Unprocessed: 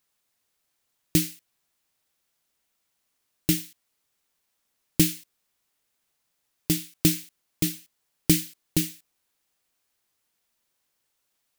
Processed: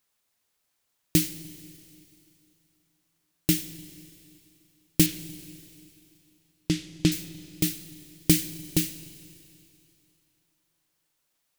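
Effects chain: 5.06–7.12 LPF 5100 Hz 12 dB/oct; Schroeder reverb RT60 2.8 s, combs from 33 ms, DRR 13.5 dB

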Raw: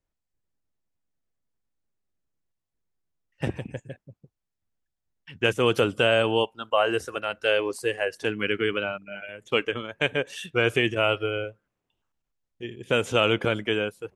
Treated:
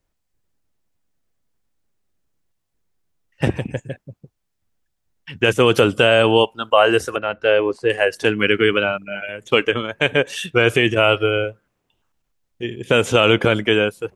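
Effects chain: 7.16–7.9 tape spacing loss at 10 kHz 26 dB; maximiser +10.5 dB; gain -1 dB

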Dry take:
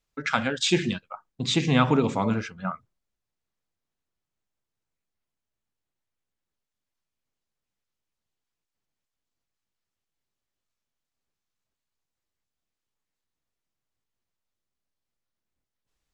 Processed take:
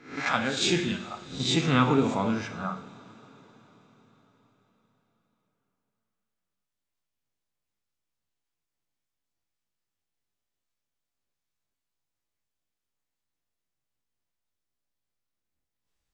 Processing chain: spectral swells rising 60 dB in 0.46 s; two-slope reverb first 0.54 s, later 5 s, from -19 dB, DRR 6.5 dB; gain -4 dB

